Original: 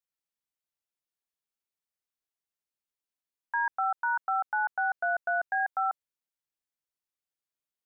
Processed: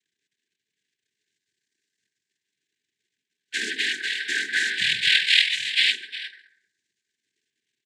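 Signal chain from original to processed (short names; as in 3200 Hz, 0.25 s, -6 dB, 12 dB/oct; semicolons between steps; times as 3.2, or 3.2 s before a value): delay-line pitch shifter +10 st; echo 0.354 s -17.5 dB; compressor 6:1, threshold -31 dBFS, peak gain reduction 5.5 dB; phaser stages 4, 0.41 Hz, lowest notch 550–1100 Hz; AGC gain up to 5 dB; overloaded stage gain 29.5 dB; FDN reverb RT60 0.7 s, low-frequency decay 1.3×, high-frequency decay 0.4×, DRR -9 dB; crackle 250/s -60 dBFS; noise vocoder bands 6; brick-wall FIR band-stop 460–1500 Hz; low shelf 470 Hz -9.5 dB; gain +6 dB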